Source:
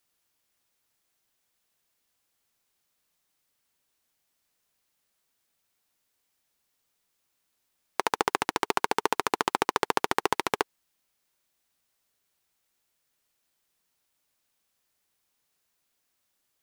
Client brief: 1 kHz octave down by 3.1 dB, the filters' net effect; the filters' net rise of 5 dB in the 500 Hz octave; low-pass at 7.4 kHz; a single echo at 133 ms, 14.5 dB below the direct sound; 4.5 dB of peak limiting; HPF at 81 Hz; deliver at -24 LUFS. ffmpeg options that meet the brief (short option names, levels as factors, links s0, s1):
-af "highpass=81,lowpass=7400,equalizer=f=500:t=o:g=7.5,equalizer=f=1000:t=o:g=-6,alimiter=limit=0.376:level=0:latency=1,aecho=1:1:133:0.188,volume=2.37"